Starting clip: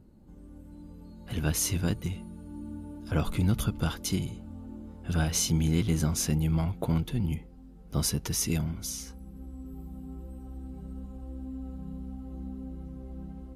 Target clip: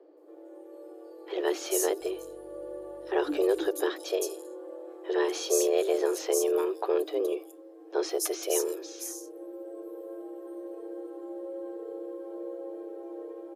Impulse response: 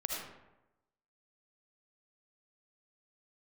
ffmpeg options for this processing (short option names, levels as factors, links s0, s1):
-filter_complex "[0:a]acrossover=split=4900[s0][s1];[s1]adelay=170[s2];[s0][s2]amix=inputs=2:normalize=0,afreqshift=280,asettb=1/sr,asplit=3[s3][s4][s5];[s3]atrim=end=2.014[s6];[s4]atrim=start=2.01:end=3.68,asetpts=PTS-STARTPTS,afade=t=in:d=0.004:c=qsin,afade=t=out:st=1.666:d=0.004:c=qsin,aeval=exprs='val(0)+0.000794*(sin(2*PI*50*n/s)+sin(2*PI*2*50*n/s)/2+sin(2*PI*3*50*n/s)/3+sin(2*PI*4*50*n/s)/4+sin(2*PI*5*50*n/s)/5)':c=same[s7];[s5]atrim=start=3.676[s8];[s6][s7]acrossfade=d=0.004:c1=hsin:c2=qsin[s9];[s9][s8]acrossfade=d=0.004:c1=qsin:c2=hsin"